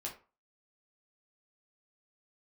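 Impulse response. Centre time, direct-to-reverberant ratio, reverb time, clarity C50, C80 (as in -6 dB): 19 ms, -2.5 dB, 0.35 s, 10.0 dB, 15.5 dB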